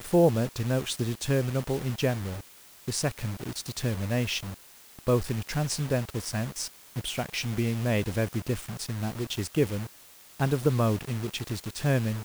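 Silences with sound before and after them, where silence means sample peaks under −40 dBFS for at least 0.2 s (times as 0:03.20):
0:02.41–0:02.88
0:04.54–0:04.99
0:06.68–0:06.96
0:09.87–0:10.40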